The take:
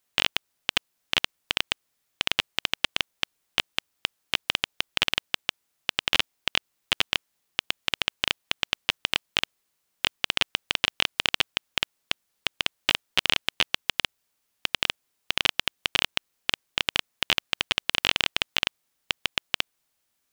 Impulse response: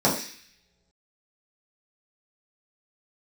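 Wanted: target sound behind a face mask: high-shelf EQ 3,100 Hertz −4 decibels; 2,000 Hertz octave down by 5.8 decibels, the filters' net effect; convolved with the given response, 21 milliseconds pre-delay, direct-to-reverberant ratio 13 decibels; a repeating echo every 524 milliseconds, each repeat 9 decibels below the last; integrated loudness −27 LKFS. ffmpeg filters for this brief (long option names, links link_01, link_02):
-filter_complex "[0:a]equalizer=frequency=2000:width_type=o:gain=-6,aecho=1:1:524|1048|1572|2096:0.355|0.124|0.0435|0.0152,asplit=2[link_01][link_02];[1:a]atrim=start_sample=2205,adelay=21[link_03];[link_02][link_03]afir=irnorm=-1:irlink=0,volume=-30dB[link_04];[link_01][link_04]amix=inputs=2:normalize=0,highshelf=frequency=3100:gain=-4,volume=4dB"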